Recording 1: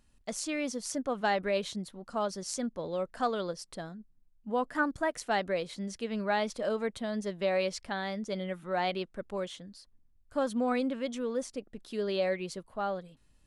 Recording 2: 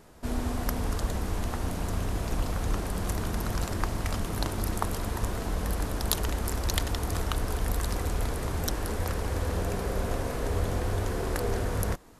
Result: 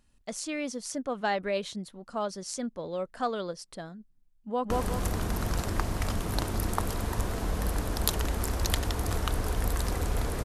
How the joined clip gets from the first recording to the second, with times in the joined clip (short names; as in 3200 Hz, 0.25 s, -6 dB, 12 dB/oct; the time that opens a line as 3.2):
recording 1
4.41–4.7 echo throw 0.18 s, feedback 40%, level -0.5 dB
4.7 switch to recording 2 from 2.74 s